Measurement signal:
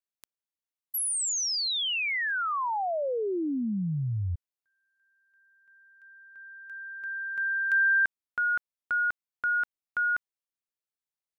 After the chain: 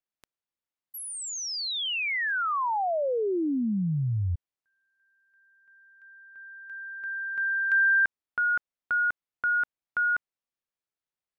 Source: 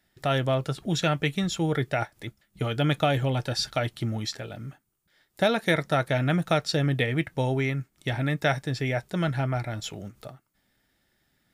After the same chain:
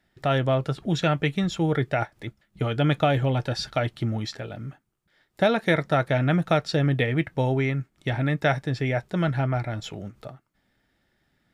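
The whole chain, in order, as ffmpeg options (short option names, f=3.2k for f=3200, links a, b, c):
-af "lowpass=f=2.8k:p=1,volume=2.5dB"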